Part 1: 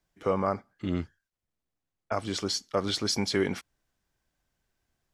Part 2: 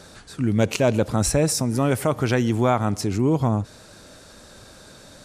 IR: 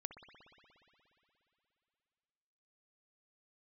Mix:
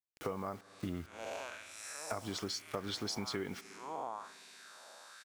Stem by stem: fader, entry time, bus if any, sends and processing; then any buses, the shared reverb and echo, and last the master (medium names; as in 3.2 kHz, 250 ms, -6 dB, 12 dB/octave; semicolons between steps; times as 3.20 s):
-1.0 dB, 0.00 s, send -15 dB, band-stop 560 Hz; bit crusher 8-bit
-10.5 dB, 0.60 s, send -17 dB, spectral blur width 263 ms; level rider gain up to 3 dB; LFO high-pass sine 1.1 Hz 740–2300 Hz; auto duck -8 dB, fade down 1.65 s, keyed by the first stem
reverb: on, RT60 3.1 s, pre-delay 59 ms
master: compression 6:1, threshold -36 dBFS, peak gain reduction 14 dB